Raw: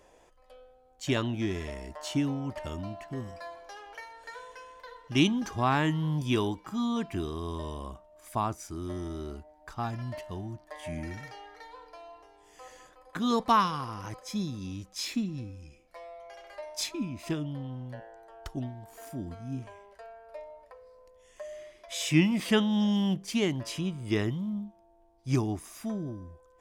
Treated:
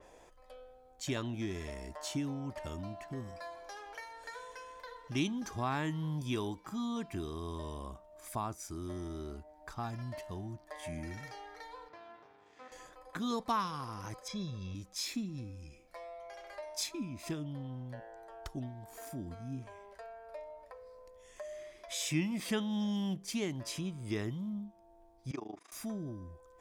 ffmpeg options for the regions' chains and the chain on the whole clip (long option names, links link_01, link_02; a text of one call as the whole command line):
ffmpeg -i in.wav -filter_complex "[0:a]asettb=1/sr,asplit=3[link_01][link_02][link_03];[link_01]atrim=end=11.884[link_04];[link_02]atrim=start=11.88:end=12.72,asetpts=PTS-STARTPTS,afade=type=in:duration=0.004:curve=qsin,afade=type=out:start_time=0.836:duration=0.004:curve=qsin,aeval=exprs='max(val(0),0)':channel_layout=same,highpass=110,lowpass=3500[link_05];[link_03]atrim=start=12.716[link_06];[link_04][link_05]acrossfade=duration=0.004:curve1=hsin:curve2=qsin[link_07];[link_07][link_06]acrossfade=duration=0.004:curve1=qsin:curve2=hsin,asettb=1/sr,asplit=3[link_08][link_09][link_10];[link_08]atrim=end=14.284[link_11];[link_09]atrim=start=14.28:end=14.75,asetpts=PTS-STARTPTS,afade=type=in:duration=0.004:curve=qsin,afade=type=out:start_time=0.466:duration=0.004:curve=qsin,lowpass=4000,aecho=1:1:1.8:0.8,atrim=end_sample=20727[link_12];[link_10]atrim=start=14.746[link_13];[link_11][link_12]acrossfade=duration=0.004:curve1=hsin:curve2=qsin[link_14];[link_14][link_13]acrossfade=duration=0.004:curve1=qsin:curve2=hsin,asettb=1/sr,asplit=3[link_15][link_16][link_17];[link_15]atrim=end=25.314[link_18];[link_16]atrim=start=25.31:end=25.72,asetpts=PTS-STARTPTS,afade=type=in:duration=0.004:curve=qsin,afade=type=out:start_time=0.406:duration=0.004:curve=qsin,tremolo=f=26:d=0.919,highpass=360,lowpass=3700[link_19];[link_17]atrim=start=25.716[link_20];[link_18][link_19]acrossfade=duration=0.004:curve1=hsin:curve2=qsin[link_21];[link_21][link_20]acrossfade=duration=0.004:curve1=qsin:curve2=hsin,bandreject=frequency=2900:width=15,acompressor=threshold=-51dB:ratio=1.5,adynamicequalizer=threshold=0.00158:dfrequency=4600:dqfactor=0.7:tfrequency=4600:tqfactor=0.7:attack=5:release=100:ratio=0.375:range=2:mode=boostabove:tftype=highshelf,volume=1.5dB" out.wav